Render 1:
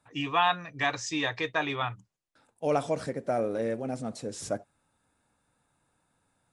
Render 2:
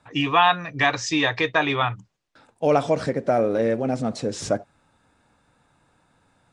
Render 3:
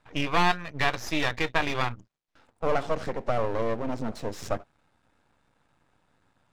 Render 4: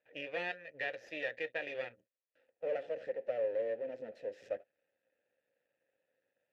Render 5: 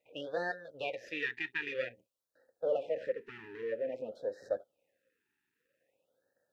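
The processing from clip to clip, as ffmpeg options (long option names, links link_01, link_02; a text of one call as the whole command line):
ffmpeg -i in.wav -filter_complex "[0:a]asplit=2[link_01][link_02];[link_02]acompressor=threshold=-33dB:ratio=6,volume=-1dB[link_03];[link_01][link_03]amix=inputs=2:normalize=0,lowpass=5900,volume=5.5dB" out.wav
ffmpeg -i in.wav -af "aeval=exprs='max(val(0),0)':channel_layout=same,highshelf=frequency=6000:gain=-7,volume=-1.5dB" out.wav
ffmpeg -i in.wav -filter_complex "[0:a]asplit=3[link_01][link_02][link_03];[link_01]bandpass=frequency=530:width_type=q:width=8,volume=0dB[link_04];[link_02]bandpass=frequency=1840:width_type=q:width=8,volume=-6dB[link_05];[link_03]bandpass=frequency=2480:width_type=q:width=8,volume=-9dB[link_06];[link_04][link_05][link_06]amix=inputs=3:normalize=0,volume=-1dB" out.wav
ffmpeg -i in.wav -af "afftfilt=real='re*(1-between(b*sr/1024,570*pow(2700/570,0.5+0.5*sin(2*PI*0.51*pts/sr))/1.41,570*pow(2700/570,0.5+0.5*sin(2*PI*0.51*pts/sr))*1.41))':imag='im*(1-between(b*sr/1024,570*pow(2700/570,0.5+0.5*sin(2*PI*0.51*pts/sr))/1.41,570*pow(2700/570,0.5+0.5*sin(2*PI*0.51*pts/sr))*1.41))':win_size=1024:overlap=0.75,volume=4.5dB" out.wav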